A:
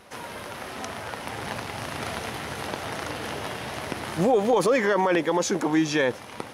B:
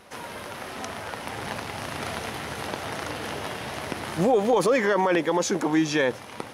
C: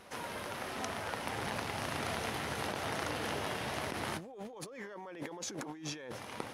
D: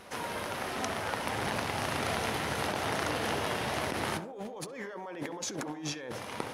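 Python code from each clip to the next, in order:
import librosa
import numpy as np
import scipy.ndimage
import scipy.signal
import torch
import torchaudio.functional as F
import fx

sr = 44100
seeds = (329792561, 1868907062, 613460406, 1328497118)

y1 = fx.hum_notches(x, sr, base_hz=60, count=2)
y2 = fx.over_compress(y1, sr, threshold_db=-32.0, ratio=-1.0)
y2 = F.gain(torch.from_numpy(y2), -8.5).numpy()
y3 = fx.echo_banded(y2, sr, ms=67, feedback_pct=46, hz=610.0, wet_db=-8.0)
y3 = F.gain(torch.from_numpy(y3), 4.5).numpy()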